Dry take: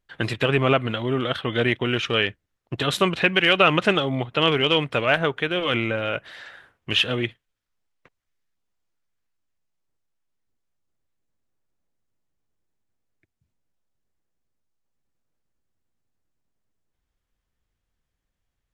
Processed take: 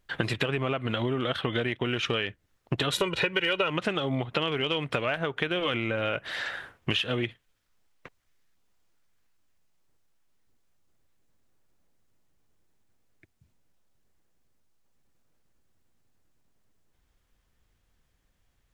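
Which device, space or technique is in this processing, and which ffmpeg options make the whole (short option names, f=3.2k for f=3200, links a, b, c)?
serial compression, leveller first: -filter_complex "[0:a]acompressor=threshold=-25dB:ratio=2,acompressor=threshold=-33dB:ratio=8,asettb=1/sr,asplit=3[a][b][c];[a]atrim=end=2.924[d];[b]atrim=start=2.92:end=3.7,asetpts=PTS-STARTPTS,afade=t=in:d=0.004:c=qsin,afade=t=out:st=0.776:d=0.004:c=qsin,aecho=1:1:2.1:0.74,atrim=end_sample=34398[e];[c]atrim=start=3.696[f];[d][e]acrossfade=d=0.004:c1=hsin:c2=qsin[g];[g][f]acrossfade=d=0.004:c1=qsin:c2=hsin,volume=8.5dB"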